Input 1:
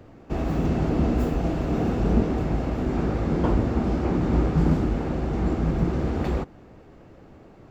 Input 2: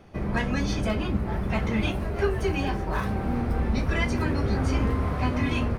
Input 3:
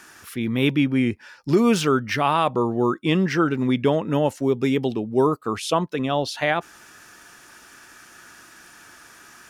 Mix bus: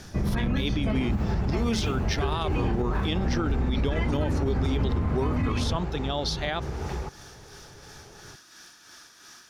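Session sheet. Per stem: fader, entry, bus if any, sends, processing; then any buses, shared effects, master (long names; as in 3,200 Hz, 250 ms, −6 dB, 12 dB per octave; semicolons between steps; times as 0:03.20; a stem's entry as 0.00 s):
+1.0 dB, 0.65 s, no send, drawn EQ curve 140 Hz 0 dB, 260 Hz −11 dB, 1,400 Hz +1 dB; downward compressor, threshold −30 dBFS, peak gain reduction 12.5 dB; hollow resonant body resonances 410/850 Hz, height 10 dB
+2.0 dB, 0.00 s, no send, bass and treble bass +7 dB, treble −6 dB; automatic gain control; automatic ducking −12 dB, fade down 0.75 s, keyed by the third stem
−4.0 dB, 0.00 s, no send, amplitude tremolo 2.9 Hz, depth 50%; flat-topped bell 4,500 Hz +9.5 dB 1.1 octaves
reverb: not used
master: brickwall limiter −17.5 dBFS, peak gain reduction 10 dB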